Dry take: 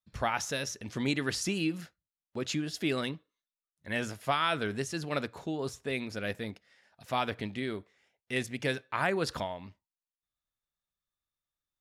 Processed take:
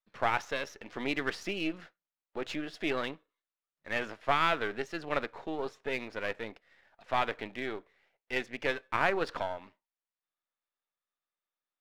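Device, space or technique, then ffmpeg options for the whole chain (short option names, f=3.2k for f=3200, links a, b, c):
crystal radio: -af "highpass=380,lowpass=2.6k,aeval=exprs='if(lt(val(0),0),0.447*val(0),val(0))':c=same,volume=4.5dB"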